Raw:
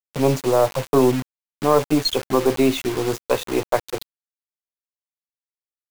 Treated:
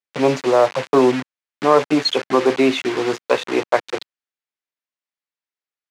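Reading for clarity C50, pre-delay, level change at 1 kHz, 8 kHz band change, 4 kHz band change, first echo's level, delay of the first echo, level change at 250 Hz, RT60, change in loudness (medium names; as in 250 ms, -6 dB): no reverb, no reverb, +4.0 dB, -3.5 dB, +3.0 dB, no echo, no echo, +1.5 dB, no reverb, +2.5 dB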